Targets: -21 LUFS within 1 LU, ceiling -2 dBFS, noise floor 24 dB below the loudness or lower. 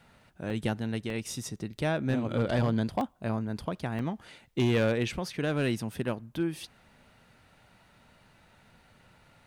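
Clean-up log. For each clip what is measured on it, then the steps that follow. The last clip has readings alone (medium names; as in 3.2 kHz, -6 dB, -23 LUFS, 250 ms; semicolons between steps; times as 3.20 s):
clipped samples 0.6%; clipping level -20.0 dBFS; dropouts 5; longest dropout 1.8 ms; loudness -31.0 LUFS; peak level -20.0 dBFS; loudness target -21.0 LUFS
-> clip repair -20 dBFS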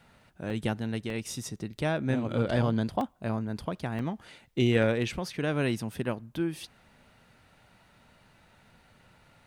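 clipped samples 0.0%; dropouts 5; longest dropout 1.8 ms
-> interpolate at 0.50/1.10/1.79/3.01/3.99 s, 1.8 ms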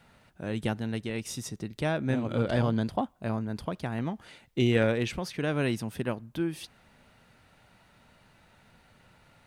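dropouts 0; loudness -30.5 LUFS; peak level -13.0 dBFS; loudness target -21.0 LUFS
-> trim +9.5 dB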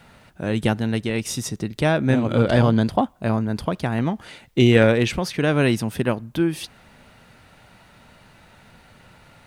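loudness -21.0 LUFS; peak level -3.5 dBFS; noise floor -52 dBFS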